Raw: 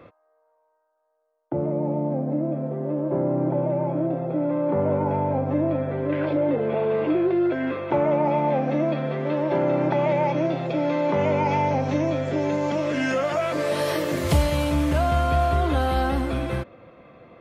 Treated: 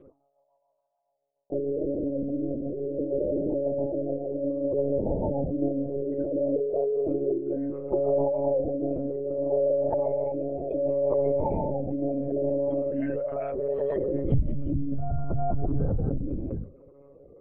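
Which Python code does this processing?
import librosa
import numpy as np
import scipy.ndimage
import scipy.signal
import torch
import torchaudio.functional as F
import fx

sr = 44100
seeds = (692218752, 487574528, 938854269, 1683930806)

y = fx.envelope_sharpen(x, sr, power=3.0)
y = fx.rotary_switch(y, sr, hz=7.0, then_hz=0.7, switch_at_s=5.21)
y = fx.hum_notches(y, sr, base_hz=60, count=6)
y = fx.lpc_monotone(y, sr, seeds[0], pitch_hz=140.0, order=16)
y = F.gain(torch.from_numpy(y), -1.5).numpy()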